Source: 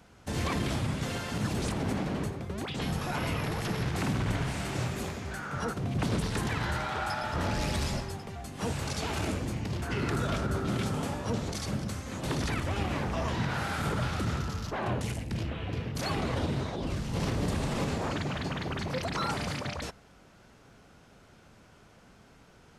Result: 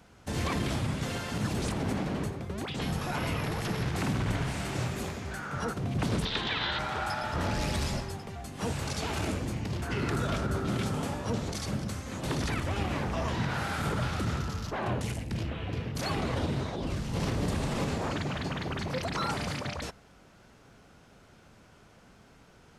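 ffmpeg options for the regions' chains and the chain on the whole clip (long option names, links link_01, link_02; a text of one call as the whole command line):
ffmpeg -i in.wav -filter_complex "[0:a]asettb=1/sr,asplit=3[link_01][link_02][link_03];[link_01]atrim=end=6.254[link_04];[link_02]atrim=start=6.25:end=6.79,asetpts=PTS-STARTPTS,afade=type=in:duration=0.004:curve=qsin,afade=type=out:start_time=0.536:duration=0.004:curve=qsin,lowpass=frequency=3600:width_type=q:width=5,equalizer=frequency=96:width_type=o:width=2.5:gain=-9.5[link_05];[link_03]atrim=start=6.786[link_06];[link_04][link_05]acrossfade=duration=0.004:curve1=hsin:curve2=qsin[link_07];[link_07][link_06]acrossfade=duration=0.004:curve1=qsin:curve2=hsin" out.wav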